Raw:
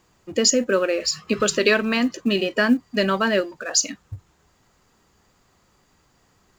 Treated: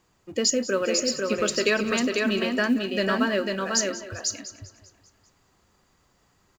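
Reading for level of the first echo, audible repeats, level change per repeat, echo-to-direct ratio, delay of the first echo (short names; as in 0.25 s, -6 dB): -18.5 dB, 8, no steady repeat, -3.0 dB, 0.179 s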